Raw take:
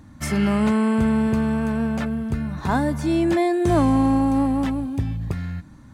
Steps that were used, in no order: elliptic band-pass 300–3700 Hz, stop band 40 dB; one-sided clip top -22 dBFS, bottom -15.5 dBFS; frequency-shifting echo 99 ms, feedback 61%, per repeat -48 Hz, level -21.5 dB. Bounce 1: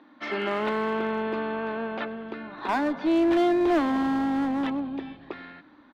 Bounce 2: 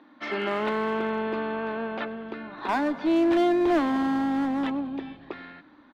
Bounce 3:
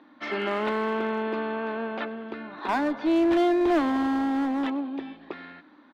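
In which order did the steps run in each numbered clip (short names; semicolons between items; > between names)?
elliptic band-pass > frequency-shifting echo > one-sided clip; elliptic band-pass > one-sided clip > frequency-shifting echo; frequency-shifting echo > elliptic band-pass > one-sided clip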